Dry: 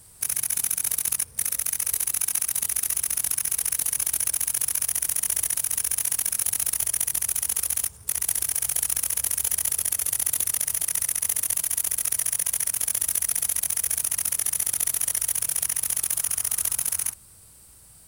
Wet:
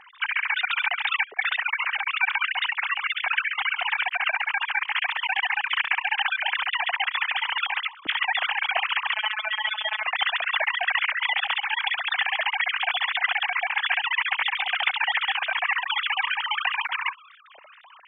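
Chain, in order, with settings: sine-wave speech; 4.33–6.17 transient shaper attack +1 dB, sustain -7 dB; 9.14–10.04 robotiser 215 Hz

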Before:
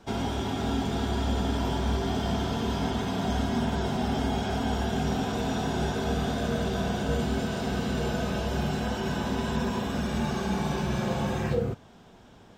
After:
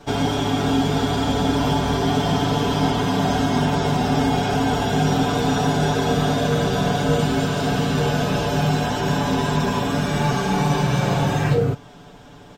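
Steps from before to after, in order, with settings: comb 6.9 ms, depth 86%; gain +7 dB

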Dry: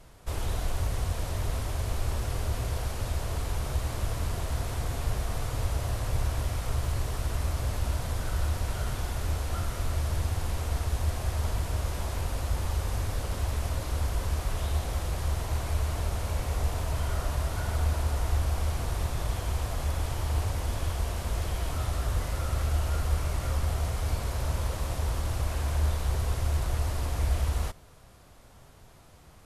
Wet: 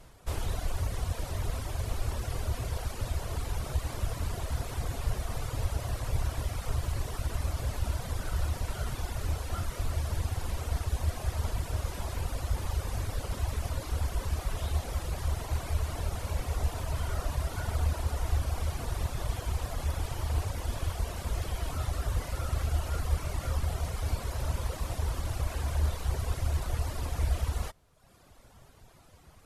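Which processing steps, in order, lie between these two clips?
reverb removal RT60 0.96 s

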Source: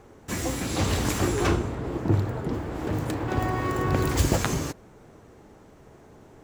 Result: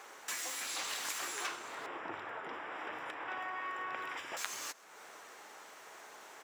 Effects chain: HPF 1200 Hz 12 dB/oct; compressor 3:1, threshold -52 dBFS, peak gain reduction 20 dB; 1.86–4.37 polynomial smoothing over 25 samples; echo 0.131 s -23 dB; gain +9.5 dB

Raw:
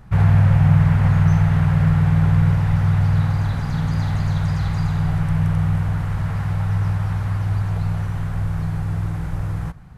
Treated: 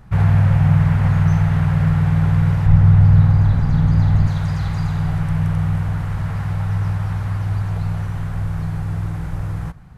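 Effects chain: 2.66–4.27 tilt -2 dB/oct

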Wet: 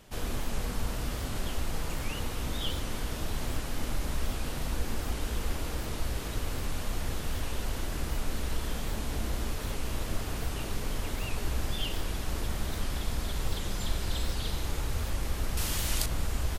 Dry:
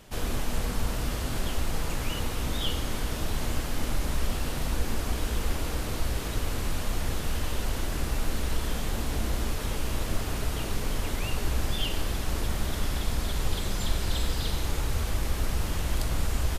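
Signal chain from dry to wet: 15.57–16.06 high shelf 2300 Hz +11.5 dB; record warp 78 rpm, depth 160 cents; gain -3.5 dB

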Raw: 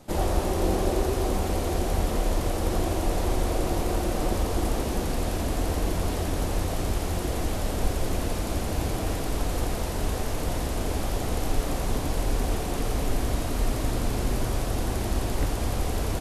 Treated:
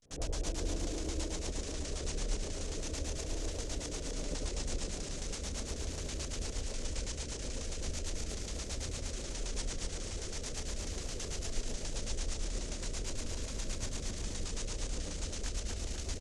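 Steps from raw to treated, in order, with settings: passive tone stack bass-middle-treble 5-5-5; notches 60/120/180/240 Hz; pitch shift -3 st; vibrato 0.39 Hz 85 cents; LFO low-pass square 9.2 Hz 470–6700 Hz; rotary speaker horn 8 Hz; on a send: split-band echo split 430 Hz, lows 85 ms, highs 0.249 s, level -3.5 dB; on the sum: gain +2.5 dB

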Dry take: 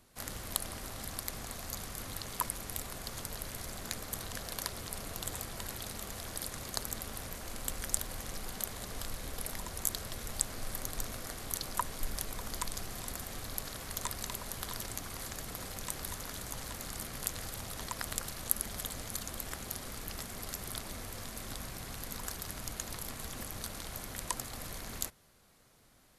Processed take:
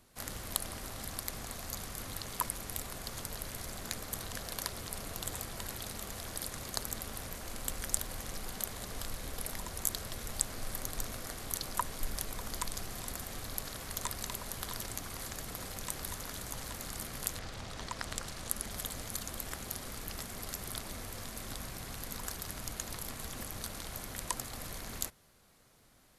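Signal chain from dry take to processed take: 17.38–18.69 LPF 4800 Hz -> 11000 Hz 12 dB/oct

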